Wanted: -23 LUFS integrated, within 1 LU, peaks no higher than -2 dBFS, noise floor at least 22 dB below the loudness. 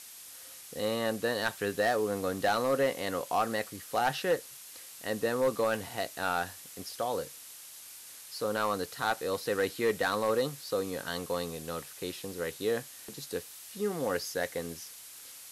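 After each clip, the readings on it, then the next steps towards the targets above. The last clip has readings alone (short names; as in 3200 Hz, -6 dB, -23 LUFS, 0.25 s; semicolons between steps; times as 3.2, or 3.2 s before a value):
clipped 0.4%; flat tops at -20.5 dBFS; noise floor -49 dBFS; noise floor target -54 dBFS; loudness -32.0 LUFS; peak -20.5 dBFS; loudness target -23.0 LUFS
-> clip repair -20.5 dBFS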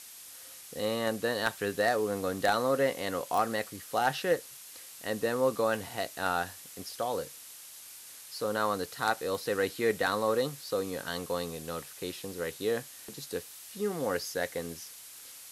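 clipped 0.0%; noise floor -49 dBFS; noise floor target -54 dBFS
-> denoiser 6 dB, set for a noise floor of -49 dBFS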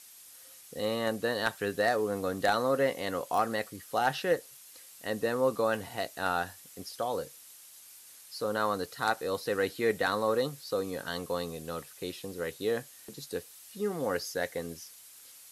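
noise floor -53 dBFS; noise floor target -54 dBFS
-> denoiser 6 dB, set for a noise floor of -53 dBFS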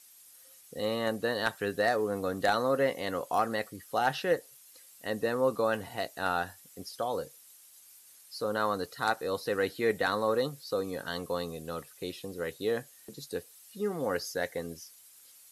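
noise floor -56 dBFS; loudness -32.0 LUFS; peak -11.5 dBFS; loudness target -23.0 LUFS
-> gain +9 dB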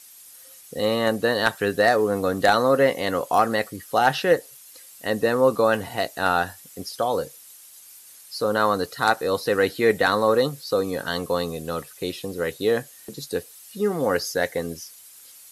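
loudness -23.0 LUFS; peak -2.5 dBFS; noise floor -47 dBFS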